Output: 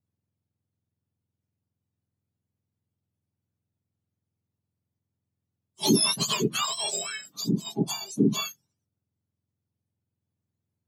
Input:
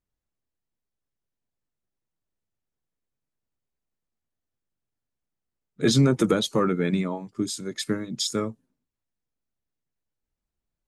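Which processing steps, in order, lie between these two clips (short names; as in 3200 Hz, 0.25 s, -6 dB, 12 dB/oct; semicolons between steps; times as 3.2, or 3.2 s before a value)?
spectrum mirrored in octaves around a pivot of 1200 Hz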